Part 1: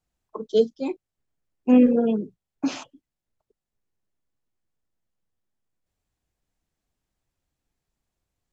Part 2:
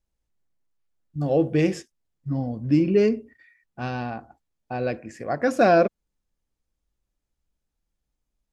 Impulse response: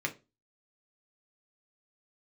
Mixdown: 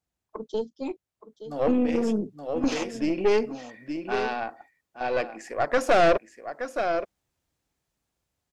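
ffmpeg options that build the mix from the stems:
-filter_complex "[0:a]highpass=56,acompressor=threshold=0.0562:ratio=3,volume=0.944,asplit=3[s0][s1][s2];[s1]volume=0.178[s3];[1:a]highpass=420,adelay=300,volume=0.944,asplit=2[s4][s5];[s5]volume=0.299[s6];[s2]apad=whole_len=389183[s7];[s4][s7]sidechaincompress=threshold=0.0282:ratio=6:attack=7.8:release=1230[s8];[s3][s6]amix=inputs=2:normalize=0,aecho=0:1:872:1[s9];[s0][s8][s9]amix=inputs=3:normalize=0,dynaudnorm=f=750:g=5:m=2.51,aeval=exprs='(tanh(5.62*val(0)+0.55)-tanh(0.55))/5.62':c=same"

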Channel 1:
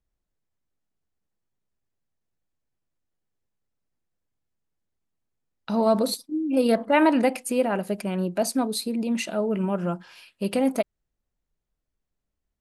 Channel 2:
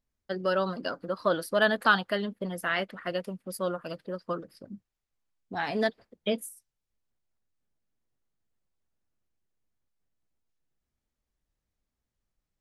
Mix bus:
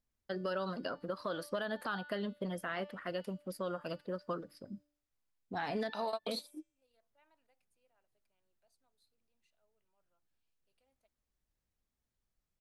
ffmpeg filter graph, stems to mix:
-filter_complex "[0:a]highpass=620,equalizer=f=3800:w=1.5:g=6,adelay=250,volume=0.794[s0];[1:a]bandreject=f=293.8:t=h:w=4,bandreject=f=587.6:t=h:w=4,bandreject=f=881.4:t=h:w=4,bandreject=f=1175.2:t=h:w=4,bandreject=f=1469:t=h:w=4,bandreject=f=1762.8:t=h:w=4,bandreject=f=2056.6:t=h:w=4,bandreject=f=2350.4:t=h:w=4,bandreject=f=2644.2:t=h:w=4,bandreject=f=2938:t=h:w=4,bandreject=f=3231.8:t=h:w=4,bandreject=f=3525.6:t=h:w=4,bandreject=f=3819.4:t=h:w=4,bandreject=f=4113.2:t=h:w=4,bandreject=f=4407:t=h:w=4,bandreject=f=4700.8:t=h:w=4,bandreject=f=4994.6:t=h:w=4,bandreject=f=5288.4:t=h:w=4,bandreject=f=5582.2:t=h:w=4,bandreject=f=5876:t=h:w=4,bandreject=f=6169.8:t=h:w=4,bandreject=f=6463.6:t=h:w=4,bandreject=f=6757.4:t=h:w=4,bandreject=f=7051.2:t=h:w=4,bandreject=f=7345:t=h:w=4,bandreject=f=7638.8:t=h:w=4,bandreject=f=7932.6:t=h:w=4,bandreject=f=8226.4:t=h:w=4,volume=0.708,asplit=2[s1][s2];[s2]apad=whole_len=567083[s3];[s0][s3]sidechaingate=range=0.00398:threshold=0.00224:ratio=16:detection=peak[s4];[s4][s1]amix=inputs=2:normalize=0,acrossover=split=1400|4000[s5][s6][s7];[s5]acompressor=threshold=0.0224:ratio=4[s8];[s6]acompressor=threshold=0.00631:ratio=4[s9];[s7]acompressor=threshold=0.002:ratio=4[s10];[s8][s9][s10]amix=inputs=3:normalize=0,alimiter=level_in=1.41:limit=0.0631:level=0:latency=1:release=54,volume=0.708"

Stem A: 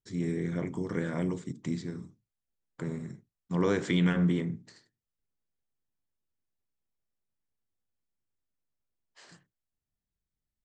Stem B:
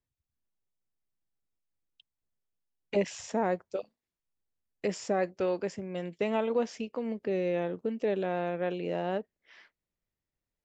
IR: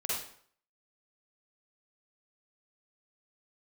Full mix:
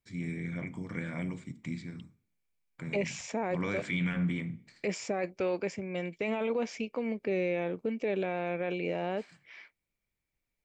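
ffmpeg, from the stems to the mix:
-filter_complex "[0:a]equalizer=f=400:t=o:w=0.67:g=-10,equalizer=f=1000:t=o:w=0.67:g=-3,equalizer=f=6300:t=o:w=0.67:g=-6,volume=0.668,asplit=2[s0][s1];[s1]volume=0.0708[s2];[1:a]volume=1.06[s3];[2:a]atrim=start_sample=2205[s4];[s2][s4]afir=irnorm=-1:irlink=0[s5];[s0][s3][s5]amix=inputs=3:normalize=0,equalizer=f=2300:w=7.8:g=15,alimiter=limit=0.075:level=0:latency=1:release=11"

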